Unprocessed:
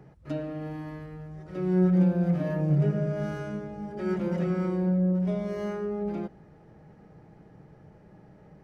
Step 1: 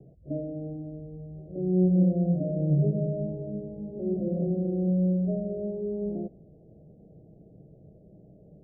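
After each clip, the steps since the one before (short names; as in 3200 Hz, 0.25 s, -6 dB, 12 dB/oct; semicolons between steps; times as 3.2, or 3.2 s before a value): steep low-pass 710 Hz 96 dB/oct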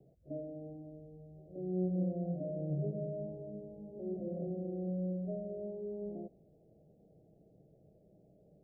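low shelf 490 Hz -11.5 dB; gain -2.5 dB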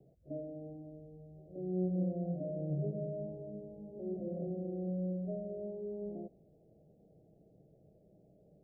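nothing audible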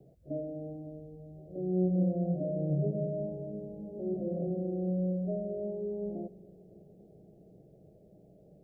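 analogue delay 0.28 s, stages 1024, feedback 78%, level -21.5 dB; gain +5.5 dB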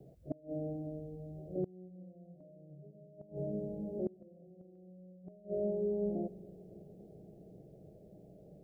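flipped gate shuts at -27 dBFS, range -26 dB; gain +2 dB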